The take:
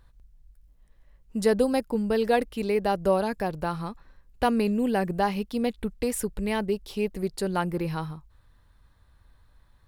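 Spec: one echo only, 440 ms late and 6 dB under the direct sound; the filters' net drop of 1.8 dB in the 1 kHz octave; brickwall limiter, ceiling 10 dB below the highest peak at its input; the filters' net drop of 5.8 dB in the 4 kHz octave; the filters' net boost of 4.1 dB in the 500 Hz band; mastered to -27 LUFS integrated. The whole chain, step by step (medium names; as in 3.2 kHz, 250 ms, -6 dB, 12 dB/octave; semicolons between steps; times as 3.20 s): peaking EQ 500 Hz +6 dB; peaking EQ 1 kHz -5.5 dB; peaking EQ 4 kHz -7.5 dB; peak limiter -17 dBFS; delay 440 ms -6 dB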